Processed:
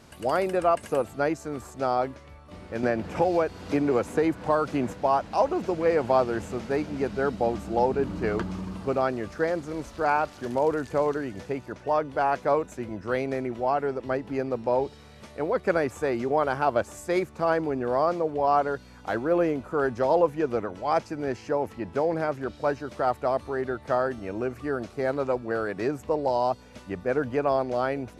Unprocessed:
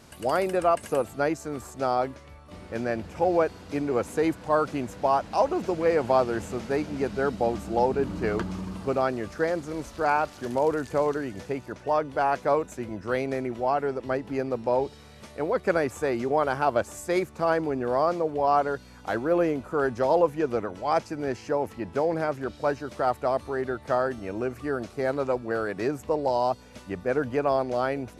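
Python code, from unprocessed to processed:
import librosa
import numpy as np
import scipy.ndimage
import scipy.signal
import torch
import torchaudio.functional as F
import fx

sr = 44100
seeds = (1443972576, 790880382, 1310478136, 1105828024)

y = fx.high_shelf(x, sr, hz=6200.0, db=-5.0)
y = fx.band_squash(y, sr, depth_pct=100, at=(2.83, 4.93))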